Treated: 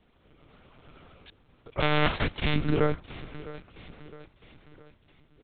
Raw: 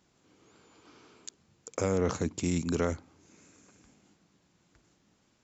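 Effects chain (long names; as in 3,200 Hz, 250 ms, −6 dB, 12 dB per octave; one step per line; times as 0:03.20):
0:01.79–0:02.54: spectral envelope flattened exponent 0.3
repeating echo 662 ms, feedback 48%, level −17 dB
one-pitch LPC vocoder at 8 kHz 150 Hz
level +5.5 dB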